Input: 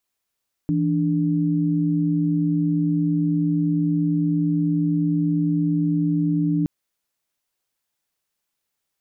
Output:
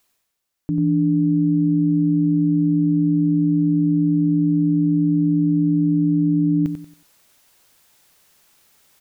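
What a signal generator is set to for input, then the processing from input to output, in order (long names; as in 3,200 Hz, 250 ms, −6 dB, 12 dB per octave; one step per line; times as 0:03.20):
held notes E3/D4 sine, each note −20.5 dBFS 5.97 s
reversed playback
upward compression, threshold −40 dBFS
reversed playback
repeating echo 92 ms, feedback 30%, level −7 dB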